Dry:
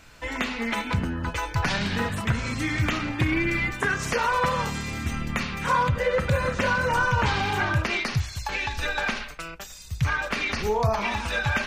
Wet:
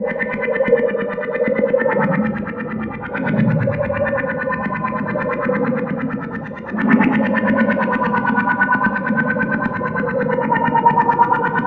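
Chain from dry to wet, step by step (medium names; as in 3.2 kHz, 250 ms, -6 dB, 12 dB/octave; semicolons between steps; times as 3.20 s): Paulstretch 12×, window 0.05 s, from 6.02 s; high-pass 160 Hz 12 dB/octave; de-hum 206.3 Hz, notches 28; LFO low-pass saw up 8.8 Hz 210–2400 Hz; small resonant body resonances 220/860/1800 Hz, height 12 dB, ringing for 45 ms; on a send: reverberation RT60 0.65 s, pre-delay 5 ms, DRR 8 dB; on the sum: trim +1.5 dB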